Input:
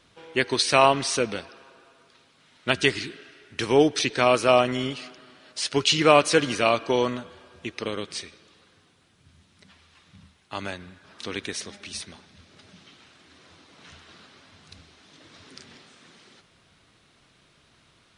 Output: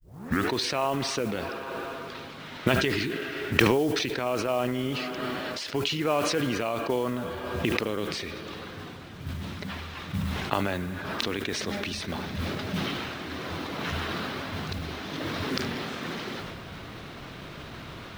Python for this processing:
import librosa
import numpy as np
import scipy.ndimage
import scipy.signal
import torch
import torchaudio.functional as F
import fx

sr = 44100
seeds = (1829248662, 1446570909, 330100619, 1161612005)

p1 = fx.tape_start_head(x, sr, length_s=0.52)
p2 = fx.recorder_agc(p1, sr, target_db=-9.5, rise_db_per_s=62.0, max_gain_db=30)
p3 = scipy.signal.sosfilt(scipy.signal.butter(2, 5500.0, 'lowpass', fs=sr, output='sos'), p2)
p4 = fx.high_shelf(p3, sr, hz=2200.0, db=-9.0)
p5 = fx.mod_noise(p4, sr, seeds[0], snr_db=23)
p6 = p5 + fx.echo_single(p5, sr, ms=72, db=-24.0, dry=0)
p7 = fx.sustainer(p6, sr, db_per_s=23.0)
y = p7 * librosa.db_to_amplitude(-9.0)